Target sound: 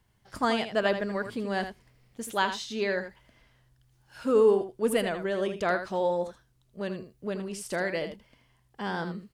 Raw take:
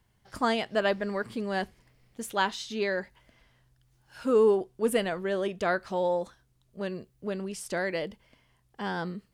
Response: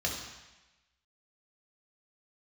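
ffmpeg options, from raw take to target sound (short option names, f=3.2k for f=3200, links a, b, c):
-af "aecho=1:1:80:0.335"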